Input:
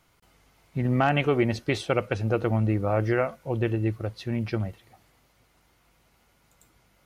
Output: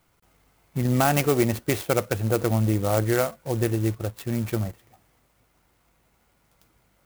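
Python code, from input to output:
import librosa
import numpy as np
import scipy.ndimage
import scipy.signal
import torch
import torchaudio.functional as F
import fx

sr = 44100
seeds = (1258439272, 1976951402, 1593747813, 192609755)

p1 = fx.quant_dither(x, sr, seeds[0], bits=6, dither='none')
p2 = x + (p1 * 10.0 ** (-8.5 / 20.0))
p3 = fx.clock_jitter(p2, sr, seeds[1], jitter_ms=0.061)
y = p3 * 10.0 ** (-1.0 / 20.0)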